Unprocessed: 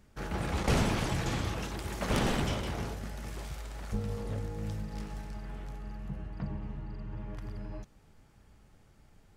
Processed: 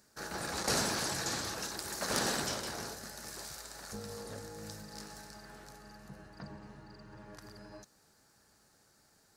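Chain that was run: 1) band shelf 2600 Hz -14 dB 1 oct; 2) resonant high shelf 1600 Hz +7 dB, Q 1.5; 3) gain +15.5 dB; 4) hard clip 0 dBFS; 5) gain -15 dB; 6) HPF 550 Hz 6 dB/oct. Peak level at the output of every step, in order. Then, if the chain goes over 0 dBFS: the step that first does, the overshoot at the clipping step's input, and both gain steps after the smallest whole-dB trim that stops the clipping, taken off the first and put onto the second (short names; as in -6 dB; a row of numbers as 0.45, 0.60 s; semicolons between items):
-15.0, -10.5, +5.0, 0.0, -15.0, -14.5 dBFS; step 3, 5.0 dB; step 3 +10.5 dB, step 5 -10 dB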